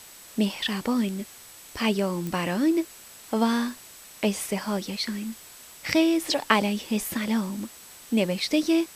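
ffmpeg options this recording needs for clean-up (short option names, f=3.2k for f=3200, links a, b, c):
-af "adeclick=t=4,bandreject=f=7.9k:w=30,afwtdn=0.005"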